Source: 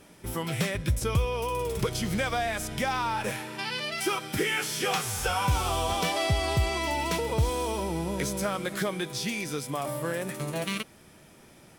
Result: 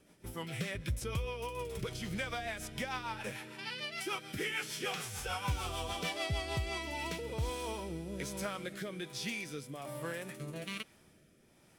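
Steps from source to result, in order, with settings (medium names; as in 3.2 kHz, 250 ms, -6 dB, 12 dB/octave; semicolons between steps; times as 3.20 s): rotary cabinet horn 6.7 Hz, later 1.2 Hz, at 6.34 s; dynamic bell 2.5 kHz, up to +4 dB, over -46 dBFS, Q 0.81; trim -8.5 dB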